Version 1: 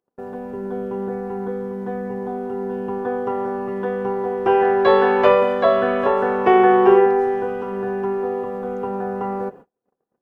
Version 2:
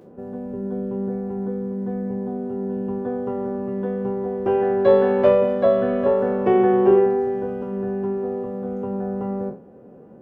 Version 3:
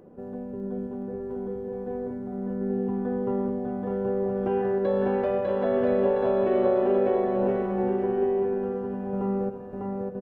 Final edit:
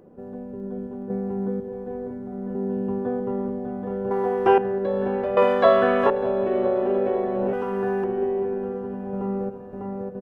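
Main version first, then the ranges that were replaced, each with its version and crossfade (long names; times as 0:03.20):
3
0:01.10–0:01.60: punch in from 2
0:02.55–0:03.20: punch in from 2
0:04.11–0:04.58: punch in from 1
0:05.37–0:06.10: punch in from 1
0:07.53–0:08.04: punch in from 1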